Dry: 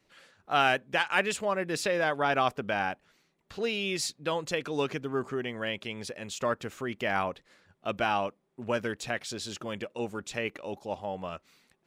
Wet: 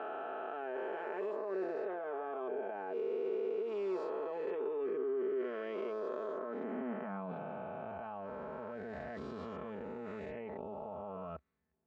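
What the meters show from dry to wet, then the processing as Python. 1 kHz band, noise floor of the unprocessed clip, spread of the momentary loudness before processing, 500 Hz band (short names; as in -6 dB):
-12.0 dB, -73 dBFS, 12 LU, -4.0 dB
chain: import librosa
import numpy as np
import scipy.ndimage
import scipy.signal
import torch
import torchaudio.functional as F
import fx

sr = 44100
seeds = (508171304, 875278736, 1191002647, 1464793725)

y = fx.spec_swells(x, sr, rise_s=2.81)
y = scipy.signal.sosfilt(scipy.signal.butter(2, 1100.0, 'lowpass', fs=sr, output='sos'), y)
y = y + 0.56 * np.pad(y, (int(4.6 * sr / 1000.0), 0))[:len(y)]
y = fx.level_steps(y, sr, step_db=21)
y = fx.filter_sweep_highpass(y, sr, from_hz=360.0, to_hz=67.0, start_s=6.29, end_s=8.35, q=4.0)
y = F.gain(torch.from_numpy(y), -2.0).numpy()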